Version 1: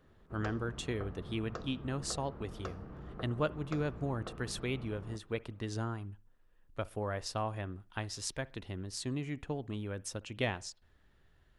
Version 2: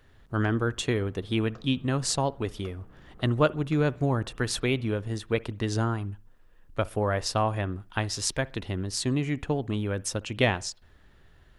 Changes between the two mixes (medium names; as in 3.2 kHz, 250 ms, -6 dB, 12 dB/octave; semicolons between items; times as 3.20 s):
speech +10.0 dB; background -7.5 dB